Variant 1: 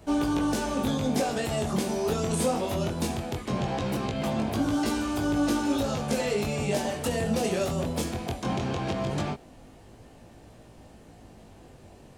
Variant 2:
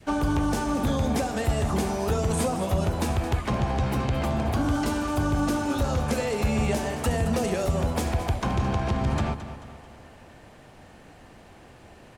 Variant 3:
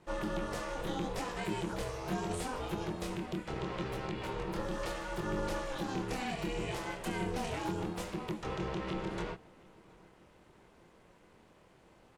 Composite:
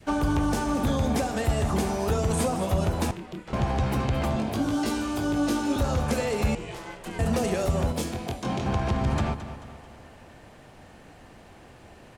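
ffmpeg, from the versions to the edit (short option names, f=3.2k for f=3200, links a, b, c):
-filter_complex "[2:a]asplit=2[a][b];[0:a]asplit=2[c][d];[1:a]asplit=5[e][f][g][h][i];[e]atrim=end=3.112[j];[a]atrim=start=3.108:end=3.532[k];[f]atrim=start=3.528:end=4.362[l];[c]atrim=start=4.358:end=5.762[m];[g]atrim=start=5.758:end=6.552[n];[b]atrim=start=6.548:end=7.192[o];[h]atrim=start=7.188:end=7.922[p];[d]atrim=start=7.918:end=8.662[q];[i]atrim=start=8.658[r];[j][k]acrossfade=d=0.004:c1=hsin:c2=hsin[s];[s][l]acrossfade=d=0.004:c1=hsin:c2=hsin[t];[t][m]acrossfade=d=0.004:c1=hsin:c2=hsin[u];[u][n]acrossfade=d=0.004:c1=hsin:c2=hsin[v];[v][o]acrossfade=d=0.004:c1=hsin:c2=hsin[w];[w][p]acrossfade=d=0.004:c1=hsin:c2=hsin[x];[x][q]acrossfade=d=0.004:c1=hsin:c2=hsin[y];[y][r]acrossfade=d=0.004:c1=hsin:c2=hsin"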